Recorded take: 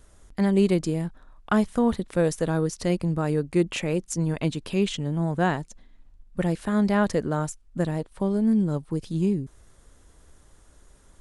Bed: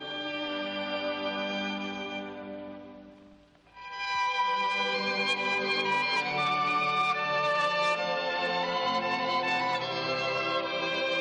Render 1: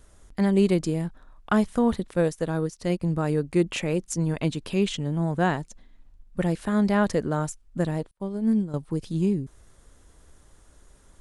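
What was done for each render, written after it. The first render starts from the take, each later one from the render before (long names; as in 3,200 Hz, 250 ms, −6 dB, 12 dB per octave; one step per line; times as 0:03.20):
0:02.13–0:03.02: expander for the loud parts, over −41 dBFS
0:08.11–0:08.74: expander for the loud parts 2.5 to 1, over −43 dBFS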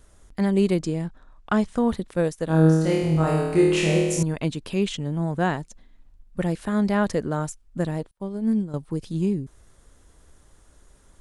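0:00.83–0:01.78: low-pass filter 9,000 Hz 24 dB per octave
0:02.45–0:04.23: flutter between parallel walls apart 4.3 metres, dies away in 1.1 s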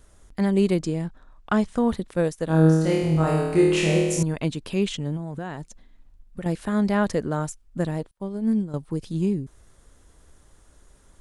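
0:05.16–0:06.46: downward compressor 12 to 1, threshold −27 dBFS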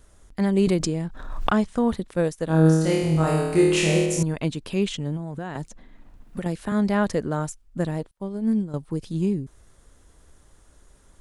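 0:00.67–0:01.66: background raised ahead of every attack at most 48 dB per second
0:02.65–0:04.06: high-shelf EQ 4,300 Hz +6.5 dB
0:05.55–0:06.72: multiband upward and downward compressor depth 70%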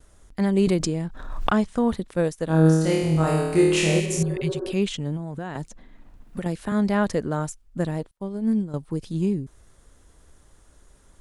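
0:04.02–0:04.70: healed spectral selection 250–1,700 Hz after
noise gate with hold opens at −50 dBFS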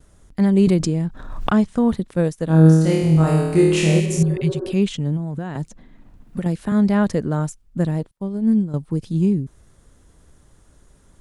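parametric band 150 Hz +7 dB 2.1 octaves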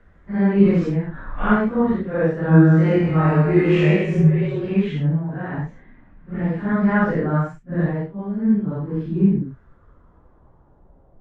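random phases in long frames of 200 ms
low-pass filter sweep 1,800 Hz → 730 Hz, 0:09.04–0:11.12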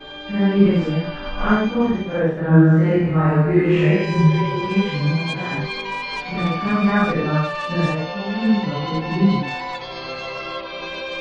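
mix in bed +0.5 dB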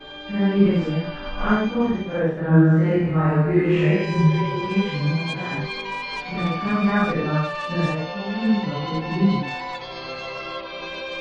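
level −2.5 dB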